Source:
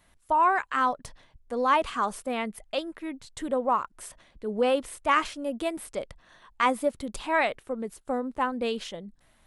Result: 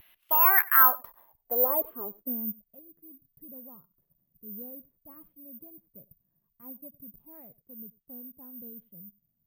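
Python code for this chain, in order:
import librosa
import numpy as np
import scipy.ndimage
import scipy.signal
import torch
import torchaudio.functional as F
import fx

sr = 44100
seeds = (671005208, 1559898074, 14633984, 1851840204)

p1 = fx.riaa(x, sr, side='recording')
p2 = fx.vibrato(p1, sr, rate_hz=0.35, depth_cents=19.0)
p3 = fx.filter_sweep_lowpass(p2, sr, from_hz=2800.0, to_hz=160.0, start_s=0.31, end_s=2.73, q=3.4)
p4 = p3 + fx.echo_single(p3, sr, ms=94, db=-22.5, dry=0)
p5 = (np.kron(scipy.signal.resample_poly(p4, 1, 3), np.eye(3)[0]) * 3)[:len(p4)]
y = p5 * 10.0 ** (-5.5 / 20.0)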